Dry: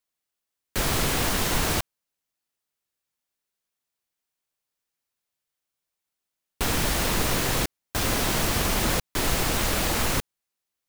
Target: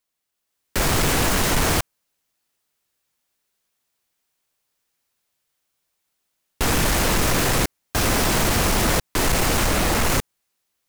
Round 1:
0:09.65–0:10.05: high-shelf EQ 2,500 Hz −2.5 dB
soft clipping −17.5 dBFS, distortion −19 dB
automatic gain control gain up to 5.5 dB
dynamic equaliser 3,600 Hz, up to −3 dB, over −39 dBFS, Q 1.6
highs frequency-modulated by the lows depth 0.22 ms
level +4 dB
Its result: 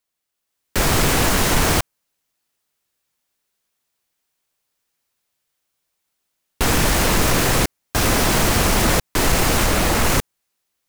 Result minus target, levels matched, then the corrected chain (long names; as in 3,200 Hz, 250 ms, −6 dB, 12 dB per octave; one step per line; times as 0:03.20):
soft clipping: distortion −7 dB
0:09.65–0:10.05: high-shelf EQ 2,500 Hz −2.5 dB
soft clipping −24 dBFS, distortion −11 dB
automatic gain control gain up to 5.5 dB
dynamic equaliser 3,600 Hz, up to −3 dB, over −39 dBFS, Q 1.6
highs frequency-modulated by the lows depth 0.22 ms
level +4 dB